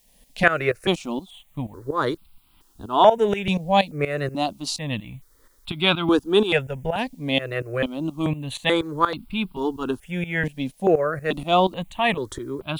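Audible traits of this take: tremolo saw up 4.2 Hz, depth 85%; a quantiser's noise floor 12-bit, dither triangular; notches that jump at a steady rate 2.3 Hz 360–1800 Hz

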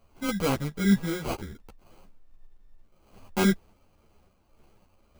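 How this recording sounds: a quantiser's noise floor 12-bit, dither none; random-step tremolo; aliases and images of a low sample rate 1.8 kHz, jitter 0%; a shimmering, thickened sound

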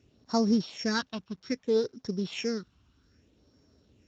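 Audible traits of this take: a buzz of ramps at a fixed pitch in blocks of 8 samples; phasing stages 6, 0.62 Hz, lowest notch 490–2700 Hz; a quantiser's noise floor 12-bit, dither none; Speex

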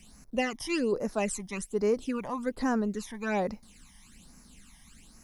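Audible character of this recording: a quantiser's noise floor 12-bit, dither none; phasing stages 12, 1.2 Hz, lowest notch 430–3300 Hz

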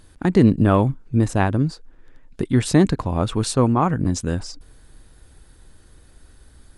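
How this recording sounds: noise floor -51 dBFS; spectral tilt -7.0 dB/octave

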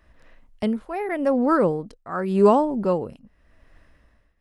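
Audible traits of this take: tremolo triangle 0.86 Hz, depth 90%

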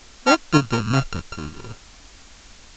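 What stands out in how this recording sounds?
a buzz of ramps at a fixed pitch in blocks of 32 samples; tremolo saw up 8.7 Hz, depth 40%; a quantiser's noise floor 8-bit, dither triangular; A-law

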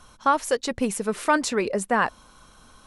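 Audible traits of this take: noise floor -54 dBFS; spectral tilt -3.5 dB/octave

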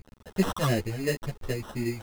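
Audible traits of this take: a quantiser's noise floor 8-bit, dither none; phasing stages 8, 2.9 Hz, lowest notch 360–3700 Hz; aliases and images of a low sample rate 2.3 kHz, jitter 0%; a shimmering, thickened sound

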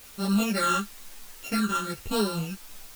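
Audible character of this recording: a buzz of ramps at a fixed pitch in blocks of 32 samples; phasing stages 8, 1 Hz, lowest notch 660–2200 Hz; a quantiser's noise floor 8-bit, dither triangular; a shimmering, thickened sound

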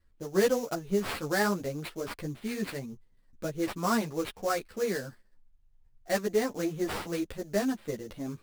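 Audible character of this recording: aliases and images of a low sample rate 6.5 kHz, jitter 20%; a shimmering, thickened sound

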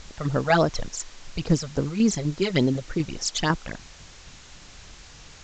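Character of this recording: phasing stages 12, 3.5 Hz, lowest notch 280–3500 Hz; tremolo saw down 4 Hz, depth 45%; a quantiser's noise floor 8-bit, dither triangular; µ-law

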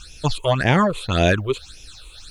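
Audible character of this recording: a quantiser's noise floor 12-bit, dither none; phasing stages 8, 1.8 Hz, lowest notch 200–1300 Hz

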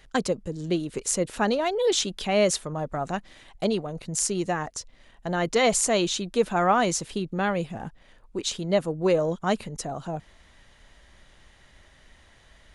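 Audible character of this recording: noise floor -56 dBFS; spectral tilt -3.5 dB/octave

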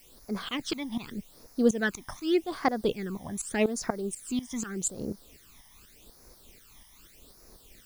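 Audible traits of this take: tremolo saw up 4.1 Hz, depth 90%; a quantiser's noise floor 10-bit, dither triangular; phasing stages 12, 0.84 Hz, lowest notch 440–3100 Hz

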